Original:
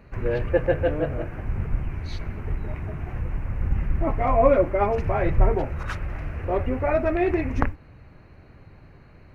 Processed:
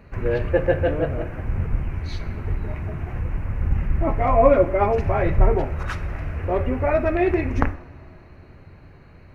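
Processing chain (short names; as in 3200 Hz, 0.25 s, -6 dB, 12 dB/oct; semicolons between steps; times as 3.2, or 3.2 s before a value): two-slope reverb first 0.57 s, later 3 s, from -16 dB, DRR 11.5 dB; gain +2 dB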